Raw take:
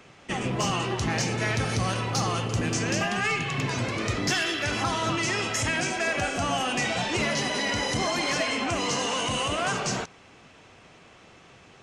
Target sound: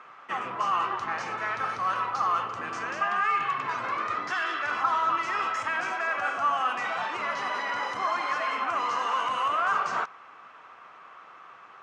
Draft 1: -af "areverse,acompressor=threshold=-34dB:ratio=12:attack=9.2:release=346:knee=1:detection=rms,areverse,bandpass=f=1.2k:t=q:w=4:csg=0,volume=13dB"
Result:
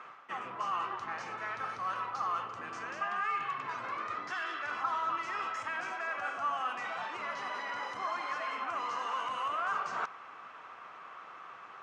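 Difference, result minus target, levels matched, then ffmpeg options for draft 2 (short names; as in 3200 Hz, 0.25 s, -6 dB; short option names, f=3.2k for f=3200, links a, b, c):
compressor: peak gain reduction +8 dB
-af "areverse,acompressor=threshold=-25.5dB:ratio=12:attack=9.2:release=346:knee=1:detection=rms,areverse,bandpass=f=1.2k:t=q:w=4:csg=0,volume=13dB"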